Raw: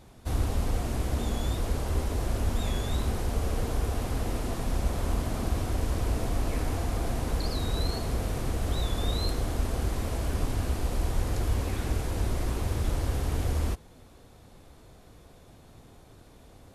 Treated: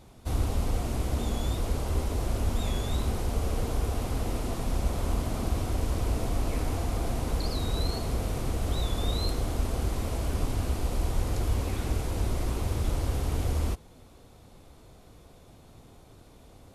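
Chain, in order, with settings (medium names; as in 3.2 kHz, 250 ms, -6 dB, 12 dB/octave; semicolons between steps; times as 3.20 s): peaking EQ 1.7 kHz -4.5 dB 0.3 oct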